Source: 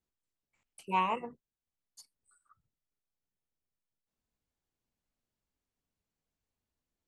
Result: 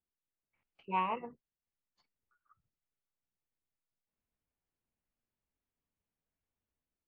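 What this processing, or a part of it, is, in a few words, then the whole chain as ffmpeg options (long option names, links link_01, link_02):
action camera in a waterproof case: -af "lowpass=frequency=2900:width=0.5412,lowpass=frequency=2900:width=1.3066,dynaudnorm=framelen=160:gausssize=5:maxgain=4dB,volume=-7dB" -ar 22050 -c:a aac -b:a 96k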